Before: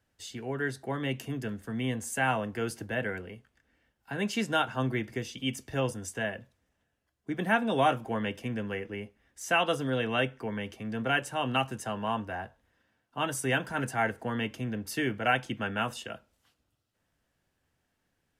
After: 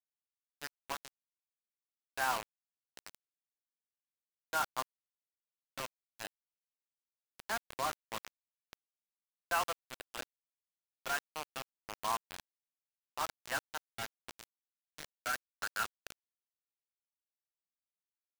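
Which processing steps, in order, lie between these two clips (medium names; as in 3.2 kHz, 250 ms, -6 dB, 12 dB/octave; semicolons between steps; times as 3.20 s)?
rotary cabinet horn 0.8 Hz; band-pass sweep 1.1 kHz -> 2.2 kHz, 14.39–18.28 s; bit crusher 6-bit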